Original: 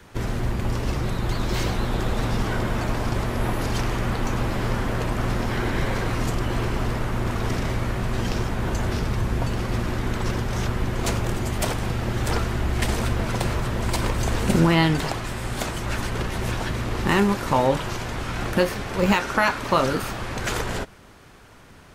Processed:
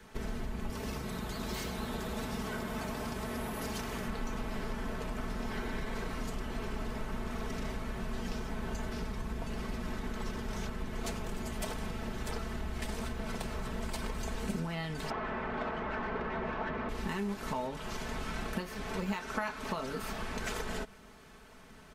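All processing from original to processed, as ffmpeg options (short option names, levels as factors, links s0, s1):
-filter_complex "[0:a]asettb=1/sr,asplit=3[s0][s1][s2];[s0]atrim=end=0.704[s3];[s1]atrim=start=0.7:end=4.08,asetpts=PTS-STARTPTS,afade=t=in:d=0.004:c=qsin,afade=t=out:st=3.376:d=0.004:c=qsin,highpass=58,highshelf=f=8800:g=8.5[s4];[s2]atrim=start=4.076[s5];[s3][s4]acrossfade=d=0.004:c1=hsin:c2=qsin[s6];[s6][s5]acrossfade=d=0.004:c1=qsin:c2=hsin,asettb=1/sr,asplit=3[s7][s8][s9];[s7]atrim=end=15.104[s10];[s8]atrim=start=15.1:end=16.89,asetpts=PTS-STARTPTS,afade=t=in:d=0.004:c=qsin,afade=t=out:st=1.786:d=0.004:c=qsin,lowpass=2100,asplit=2[s11][s12];[s12]highpass=f=720:p=1,volume=10,asoftclip=type=tanh:threshold=0.251[s13];[s11][s13]amix=inputs=2:normalize=0,lowpass=f=1100:p=1,volume=0.501[s14];[s9]atrim=start=16.886[s15];[s10][s14]acrossfade=d=0.004:c1=hsin:c2=qsin[s16];[s16][s15]acrossfade=d=0.004:c1=qsin:c2=hsin,acompressor=threshold=0.0447:ratio=6,aecho=1:1:4.6:0.66,volume=0.422"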